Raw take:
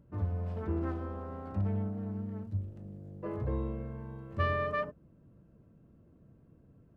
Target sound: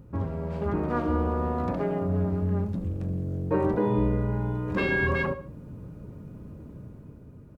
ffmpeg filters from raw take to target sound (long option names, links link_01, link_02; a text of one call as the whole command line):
ffmpeg -i in.wav -filter_complex "[0:a]dynaudnorm=framelen=120:gausssize=13:maxgain=6dB,aecho=1:1:69|138|207:0.141|0.0452|0.0145,afftfilt=real='re*lt(hypot(re,im),0.251)':imag='im*lt(hypot(re,im),0.251)':win_size=1024:overlap=0.75,asplit=2[link_01][link_02];[link_02]acompressor=threshold=-43dB:ratio=6,volume=-1dB[link_03];[link_01][link_03]amix=inputs=2:normalize=0,asetrate=40572,aresample=44100,volume=6.5dB" out.wav